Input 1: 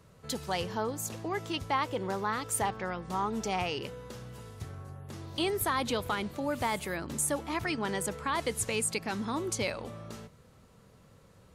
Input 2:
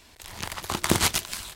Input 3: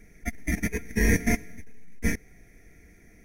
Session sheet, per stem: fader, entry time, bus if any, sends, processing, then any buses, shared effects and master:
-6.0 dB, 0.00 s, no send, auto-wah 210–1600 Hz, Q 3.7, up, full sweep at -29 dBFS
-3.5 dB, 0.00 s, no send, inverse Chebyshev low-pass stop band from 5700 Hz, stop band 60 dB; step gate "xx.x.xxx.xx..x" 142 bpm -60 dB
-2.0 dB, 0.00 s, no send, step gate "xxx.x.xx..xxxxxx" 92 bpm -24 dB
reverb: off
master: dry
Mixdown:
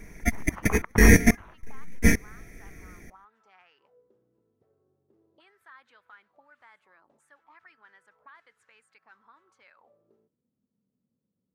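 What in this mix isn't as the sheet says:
stem 1 -6.0 dB -> -13.5 dB; stem 3 -2.0 dB -> +7.0 dB

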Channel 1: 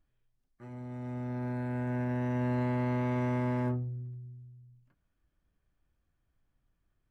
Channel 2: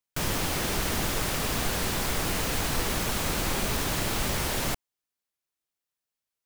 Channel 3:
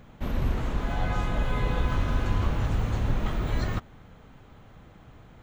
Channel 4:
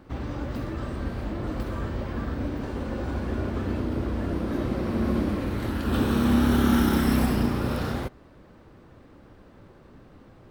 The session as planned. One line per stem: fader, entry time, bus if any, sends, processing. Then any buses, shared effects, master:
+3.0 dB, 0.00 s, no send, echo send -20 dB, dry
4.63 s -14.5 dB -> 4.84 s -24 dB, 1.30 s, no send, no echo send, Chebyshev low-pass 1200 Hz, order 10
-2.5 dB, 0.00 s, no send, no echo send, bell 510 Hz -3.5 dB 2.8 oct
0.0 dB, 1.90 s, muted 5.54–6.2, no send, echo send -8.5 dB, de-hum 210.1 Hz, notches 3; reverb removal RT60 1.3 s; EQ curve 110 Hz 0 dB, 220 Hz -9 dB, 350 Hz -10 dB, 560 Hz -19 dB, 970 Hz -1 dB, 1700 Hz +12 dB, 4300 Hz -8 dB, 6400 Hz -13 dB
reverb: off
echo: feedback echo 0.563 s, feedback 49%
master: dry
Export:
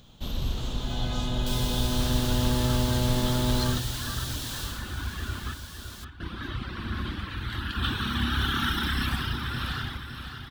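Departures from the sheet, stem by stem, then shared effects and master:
stem 2: missing Chebyshev low-pass 1200 Hz, order 10; master: extra resonant high shelf 2700 Hz +8.5 dB, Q 3

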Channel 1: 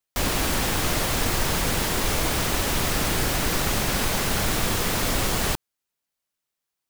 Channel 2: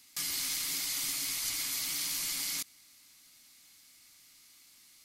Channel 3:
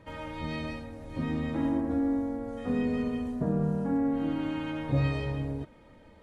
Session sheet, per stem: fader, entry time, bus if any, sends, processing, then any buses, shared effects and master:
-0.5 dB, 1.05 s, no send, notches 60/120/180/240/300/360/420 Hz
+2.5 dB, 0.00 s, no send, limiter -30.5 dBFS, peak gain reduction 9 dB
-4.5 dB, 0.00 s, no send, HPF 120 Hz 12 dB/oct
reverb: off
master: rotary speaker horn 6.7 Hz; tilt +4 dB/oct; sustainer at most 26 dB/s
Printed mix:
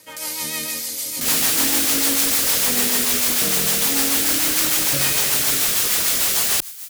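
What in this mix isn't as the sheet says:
stem 1: missing notches 60/120/180/240/300/360/420 Hz; stem 3 -4.5 dB -> +6.0 dB

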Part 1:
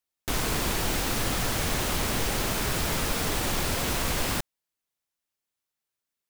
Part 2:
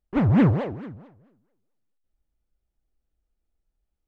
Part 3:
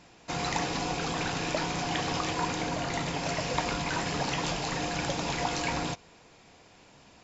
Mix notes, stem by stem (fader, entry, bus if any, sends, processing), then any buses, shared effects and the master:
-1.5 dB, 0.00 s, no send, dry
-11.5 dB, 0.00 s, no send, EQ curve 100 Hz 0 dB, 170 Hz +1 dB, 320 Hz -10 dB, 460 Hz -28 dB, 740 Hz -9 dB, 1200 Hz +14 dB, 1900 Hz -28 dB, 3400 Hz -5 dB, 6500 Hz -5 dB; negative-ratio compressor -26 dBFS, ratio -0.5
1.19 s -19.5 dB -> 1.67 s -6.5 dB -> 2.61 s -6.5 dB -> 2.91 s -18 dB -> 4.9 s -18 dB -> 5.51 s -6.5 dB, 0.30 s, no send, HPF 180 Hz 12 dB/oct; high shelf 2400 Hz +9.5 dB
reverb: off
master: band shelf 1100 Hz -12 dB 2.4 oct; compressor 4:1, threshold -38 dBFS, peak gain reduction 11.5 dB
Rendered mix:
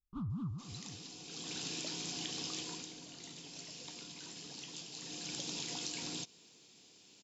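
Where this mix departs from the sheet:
stem 1: muted; stem 2: missing negative-ratio compressor -26 dBFS, ratio -0.5

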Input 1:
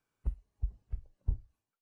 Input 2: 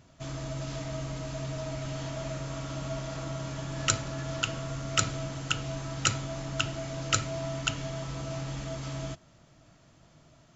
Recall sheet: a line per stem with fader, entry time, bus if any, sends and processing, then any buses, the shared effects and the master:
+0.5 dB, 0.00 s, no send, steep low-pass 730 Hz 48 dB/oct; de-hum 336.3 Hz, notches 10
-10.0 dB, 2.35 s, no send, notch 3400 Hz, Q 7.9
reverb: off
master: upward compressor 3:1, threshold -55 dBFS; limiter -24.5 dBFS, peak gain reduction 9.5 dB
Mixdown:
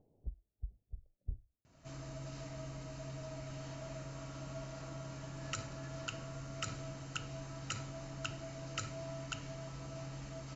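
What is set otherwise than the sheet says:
stem 1 +0.5 dB -> -9.0 dB; stem 2: entry 2.35 s -> 1.65 s

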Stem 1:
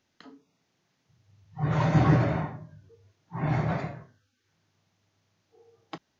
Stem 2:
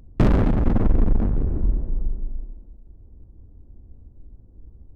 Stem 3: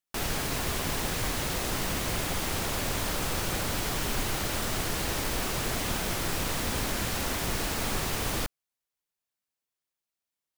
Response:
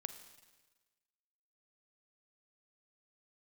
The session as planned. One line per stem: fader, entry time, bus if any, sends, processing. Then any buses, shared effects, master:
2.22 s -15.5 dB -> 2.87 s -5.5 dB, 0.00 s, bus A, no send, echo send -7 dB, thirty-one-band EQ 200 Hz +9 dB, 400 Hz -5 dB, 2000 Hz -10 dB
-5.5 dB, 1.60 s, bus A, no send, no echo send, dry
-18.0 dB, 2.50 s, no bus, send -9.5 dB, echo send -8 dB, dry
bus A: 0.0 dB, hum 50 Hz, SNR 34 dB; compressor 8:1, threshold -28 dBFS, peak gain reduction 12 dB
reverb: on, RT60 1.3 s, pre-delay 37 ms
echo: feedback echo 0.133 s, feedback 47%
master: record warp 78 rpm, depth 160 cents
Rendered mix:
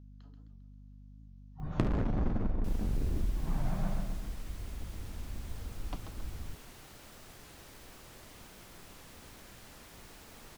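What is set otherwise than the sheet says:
stem 2 -5.5 dB -> +4.0 dB; stem 3 -18.0 dB -> -24.5 dB

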